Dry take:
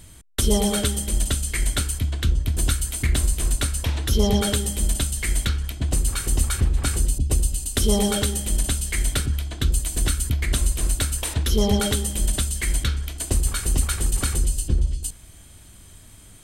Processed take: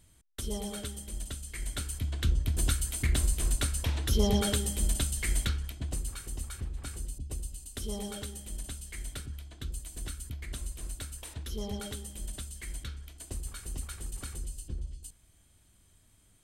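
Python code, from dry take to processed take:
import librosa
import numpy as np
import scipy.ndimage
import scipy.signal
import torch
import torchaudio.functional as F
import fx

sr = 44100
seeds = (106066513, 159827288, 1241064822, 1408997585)

y = fx.gain(x, sr, db=fx.line((1.47, -16.0), (2.26, -6.5), (5.41, -6.5), (6.33, -17.0)))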